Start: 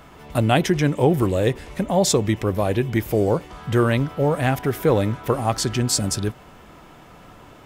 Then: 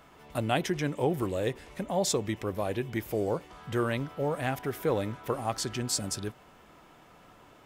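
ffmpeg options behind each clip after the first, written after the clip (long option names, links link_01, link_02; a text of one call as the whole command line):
ffmpeg -i in.wav -af "lowshelf=frequency=200:gain=-6.5,volume=-8.5dB" out.wav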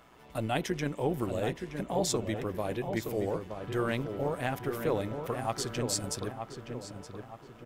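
ffmpeg -i in.wav -filter_complex "[0:a]tremolo=f=120:d=0.519,asplit=2[link_01][link_02];[link_02]adelay=921,lowpass=frequency=2000:poles=1,volume=-6.5dB,asplit=2[link_03][link_04];[link_04]adelay=921,lowpass=frequency=2000:poles=1,volume=0.44,asplit=2[link_05][link_06];[link_06]adelay=921,lowpass=frequency=2000:poles=1,volume=0.44,asplit=2[link_07][link_08];[link_08]adelay=921,lowpass=frequency=2000:poles=1,volume=0.44,asplit=2[link_09][link_10];[link_10]adelay=921,lowpass=frequency=2000:poles=1,volume=0.44[link_11];[link_01][link_03][link_05][link_07][link_09][link_11]amix=inputs=6:normalize=0" out.wav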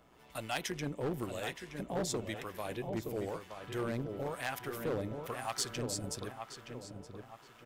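ffmpeg -i in.wav -filter_complex "[0:a]acrossover=split=730[link_01][link_02];[link_01]aeval=exprs='val(0)*(1-0.7/2+0.7/2*cos(2*PI*1*n/s))':channel_layout=same[link_03];[link_02]aeval=exprs='val(0)*(1-0.7/2-0.7/2*cos(2*PI*1*n/s))':channel_layout=same[link_04];[link_03][link_04]amix=inputs=2:normalize=0,volume=27dB,asoftclip=hard,volume=-27dB,tiltshelf=frequency=1500:gain=-3" out.wav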